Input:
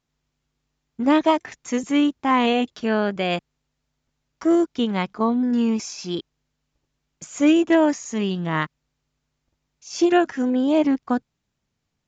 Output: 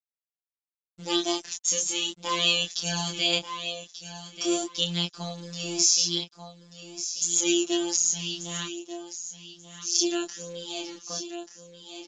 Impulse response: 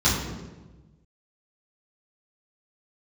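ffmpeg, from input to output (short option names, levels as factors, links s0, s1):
-filter_complex "[0:a]aexciter=amount=14.3:drive=4.9:freq=3000,aresample=16000,acrusher=bits=6:mix=0:aa=0.000001,aresample=44100,afftfilt=real='hypot(re,im)*cos(PI*b)':imag='0':win_size=1024:overlap=0.75,asplit=2[s0][s1];[s1]aecho=0:1:1186|2372|3558:0.282|0.0705|0.0176[s2];[s0][s2]amix=inputs=2:normalize=0,flanger=delay=22.5:depth=6.4:speed=0.39,dynaudnorm=f=520:g=9:m=3.76,volume=0.562"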